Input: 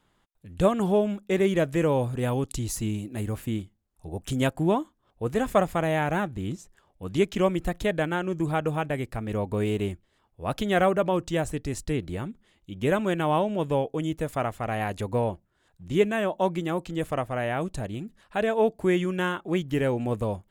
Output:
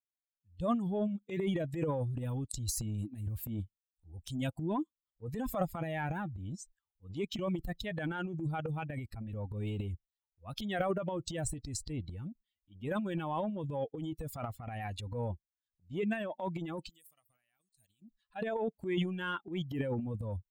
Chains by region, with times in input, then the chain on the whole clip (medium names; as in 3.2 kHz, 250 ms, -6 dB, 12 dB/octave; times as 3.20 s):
16.89–18.02 s: pre-emphasis filter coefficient 0.9 + compression, threshold -46 dBFS
whole clip: expander on every frequency bin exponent 2; compression 2:1, threshold -35 dBFS; transient shaper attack -7 dB, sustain +12 dB